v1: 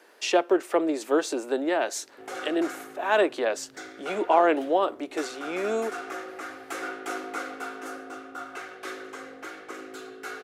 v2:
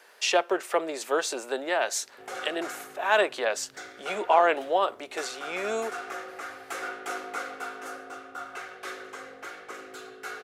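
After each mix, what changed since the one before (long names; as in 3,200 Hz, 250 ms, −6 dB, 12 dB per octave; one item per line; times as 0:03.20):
speech: add tilt shelving filter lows −3.5 dB, about 710 Hz
master: add parametric band 300 Hz −11 dB 0.48 octaves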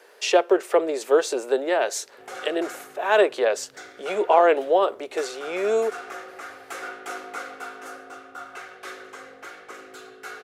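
speech: add parametric band 430 Hz +10.5 dB 1 octave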